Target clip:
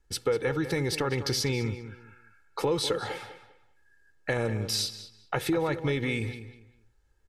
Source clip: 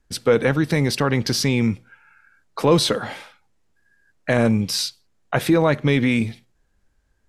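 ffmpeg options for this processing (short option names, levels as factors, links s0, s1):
-filter_complex "[0:a]aecho=1:1:2.3:0.59,acompressor=threshold=0.0891:ratio=3,asplit=2[s0][s1];[s1]adelay=199,lowpass=f=4000:p=1,volume=0.266,asplit=2[s2][s3];[s3]adelay=199,lowpass=f=4000:p=1,volume=0.26,asplit=2[s4][s5];[s5]adelay=199,lowpass=f=4000:p=1,volume=0.26[s6];[s0][s2][s4][s6]amix=inputs=4:normalize=0,volume=0.562"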